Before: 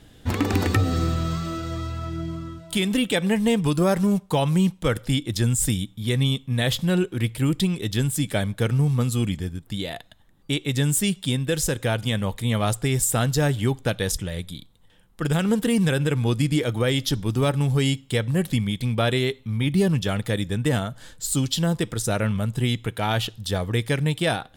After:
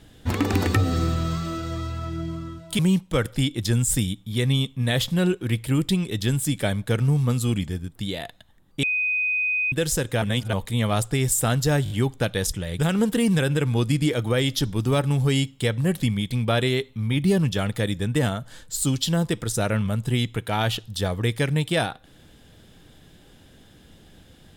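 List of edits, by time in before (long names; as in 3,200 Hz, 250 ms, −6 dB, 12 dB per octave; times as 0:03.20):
0:02.79–0:04.50: remove
0:10.54–0:11.43: beep over 2,500 Hz −20.5 dBFS
0:11.93–0:12.24: reverse
0:13.55: stutter 0.02 s, 4 plays
0:14.44–0:15.29: remove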